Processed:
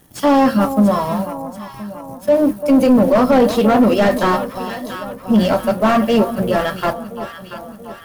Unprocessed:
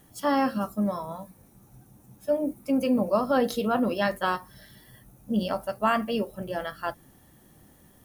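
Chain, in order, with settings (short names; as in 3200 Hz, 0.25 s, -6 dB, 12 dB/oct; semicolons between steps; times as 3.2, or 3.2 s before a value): sample leveller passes 2; on a send: echo with dull and thin repeats by turns 0.341 s, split 1000 Hz, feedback 71%, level -11 dB; on the sum: slew limiter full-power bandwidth 100 Hz; gain +7.5 dB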